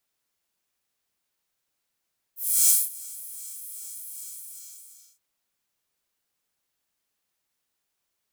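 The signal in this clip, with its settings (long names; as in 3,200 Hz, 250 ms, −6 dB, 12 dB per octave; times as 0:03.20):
subtractive patch with filter wobble A#4, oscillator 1 square, noise −3 dB, filter highpass, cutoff 6,900 Hz, Q 2.2, filter envelope 1 octave, filter decay 0.09 s, attack 331 ms, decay 0.20 s, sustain −22 dB, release 0.97 s, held 1.86 s, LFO 2.5 Hz, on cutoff 0.2 octaves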